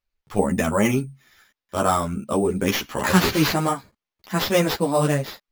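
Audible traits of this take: aliases and images of a low sample rate 8800 Hz, jitter 0%; a shimmering, thickened sound

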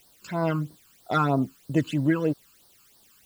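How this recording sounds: a quantiser's noise floor 10-bit, dither triangular; phasing stages 12, 3.1 Hz, lowest notch 600–2500 Hz

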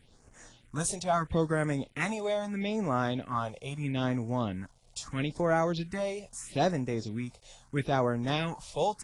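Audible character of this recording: a quantiser's noise floor 10-bit, dither none; phasing stages 4, 0.77 Hz, lowest notch 250–3700 Hz; AAC

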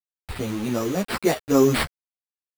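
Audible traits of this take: aliases and images of a low sample rate 6400 Hz, jitter 0%; tremolo triangle 0.82 Hz, depth 40%; a quantiser's noise floor 6-bit, dither none; a shimmering, thickened sound

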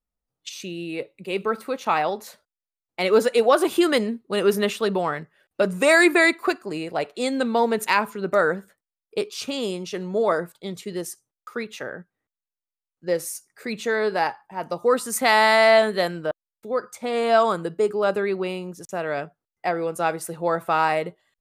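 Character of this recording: noise floor -91 dBFS; spectral tilt -4.0 dB/oct

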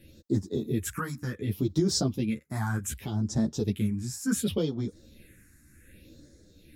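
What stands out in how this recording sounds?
phasing stages 4, 0.67 Hz, lowest notch 510–2600 Hz; tremolo triangle 1.2 Hz, depth 45%; a shimmering, thickened sound

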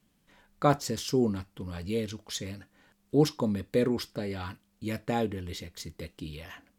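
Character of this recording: noise floor -70 dBFS; spectral tilt -5.5 dB/oct

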